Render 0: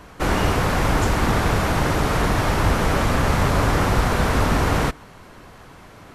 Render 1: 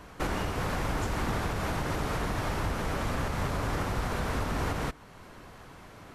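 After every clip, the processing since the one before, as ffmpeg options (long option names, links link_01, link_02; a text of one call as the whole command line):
ffmpeg -i in.wav -af "alimiter=limit=-16dB:level=0:latency=1:release=379,volume=-5dB" out.wav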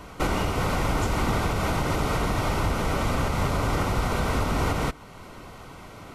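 ffmpeg -i in.wav -af "asuperstop=centerf=1700:order=8:qfactor=7.5,volume=6dB" out.wav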